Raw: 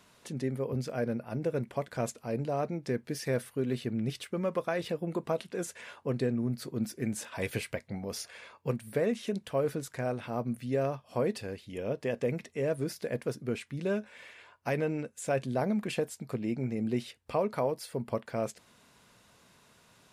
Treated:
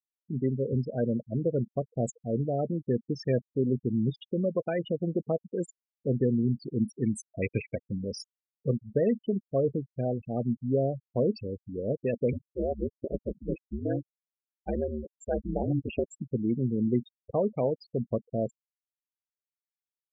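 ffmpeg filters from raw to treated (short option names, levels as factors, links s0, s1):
-filter_complex "[0:a]asplit=3[s0][s1][s2];[s0]afade=t=out:st=12.32:d=0.02[s3];[s1]aeval=exprs='val(0)*sin(2*PI*76*n/s)':c=same,afade=t=in:st=12.32:d=0.02,afade=t=out:st=16.08:d=0.02[s4];[s2]afade=t=in:st=16.08:d=0.02[s5];[s3][s4][s5]amix=inputs=3:normalize=0,equalizer=f=1100:w=1.1:g=-10.5,afftfilt=real='re*gte(hypot(re,im),0.0282)':imag='im*gte(hypot(re,im),0.0282)':win_size=1024:overlap=0.75,volume=1.88"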